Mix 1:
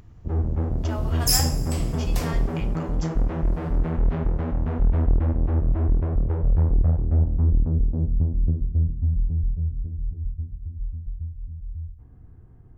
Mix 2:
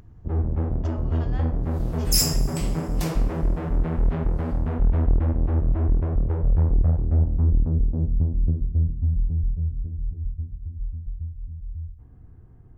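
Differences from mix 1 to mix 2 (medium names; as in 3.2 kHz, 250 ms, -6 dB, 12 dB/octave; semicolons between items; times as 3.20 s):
speech -10.0 dB; second sound: entry +0.85 s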